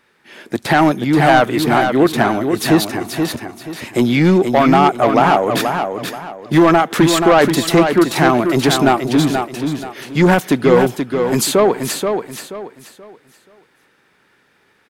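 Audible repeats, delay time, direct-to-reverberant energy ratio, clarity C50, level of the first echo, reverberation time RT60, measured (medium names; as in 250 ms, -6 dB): 3, 480 ms, no reverb, no reverb, -6.0 dB, no reverb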